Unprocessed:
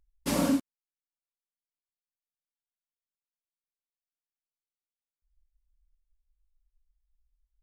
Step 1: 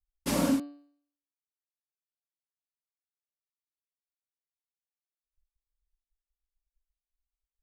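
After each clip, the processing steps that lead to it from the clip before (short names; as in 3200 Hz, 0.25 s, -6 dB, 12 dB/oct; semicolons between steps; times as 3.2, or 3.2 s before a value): expander -59 dBFS; de-hum 144 Hz, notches 34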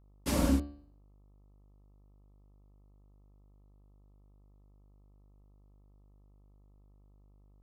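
octaver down 2 oct, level +1 dB; buzz 50 Hz, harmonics 26, -58 dBFS -8 dB/oct; gain -3 dB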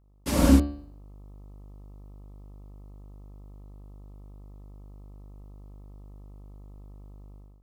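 AGC gain up to 15 dB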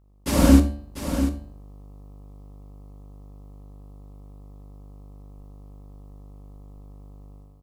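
on a send: echo 0.693 s -9.5 dB; on the sum: Schroeder reverb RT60 0.31 s, combs from 29 ms, DRR 11.5 dB; gain +3.5 dB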